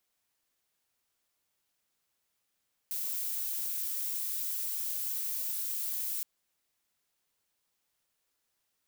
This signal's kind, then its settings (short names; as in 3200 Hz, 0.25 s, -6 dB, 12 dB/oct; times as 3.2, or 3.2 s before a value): noise violet, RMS -34.5 dBFS 3.32 s